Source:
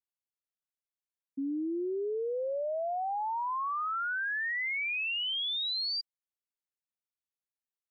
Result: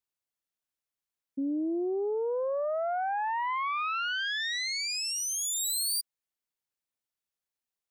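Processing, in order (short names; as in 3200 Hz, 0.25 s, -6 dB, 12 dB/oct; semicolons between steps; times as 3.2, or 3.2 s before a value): self-modulated delay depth 0.097 ms; gain +3 dB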